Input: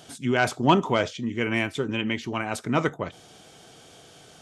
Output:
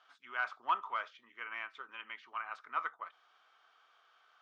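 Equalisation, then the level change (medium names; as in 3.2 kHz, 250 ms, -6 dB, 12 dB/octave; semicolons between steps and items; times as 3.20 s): band-pass filter 1.2 kHz, Q 4.3; distance through air 240 m; differentiator; +13.0 dB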